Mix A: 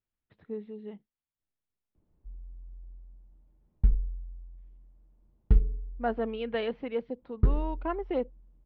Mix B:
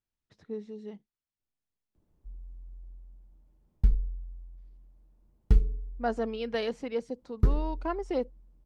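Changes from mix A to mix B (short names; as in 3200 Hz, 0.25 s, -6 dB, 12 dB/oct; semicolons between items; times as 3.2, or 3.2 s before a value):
speech: remove steep low-pass 3400 Hz 36 dB/oct; background: remove air absorption 350 m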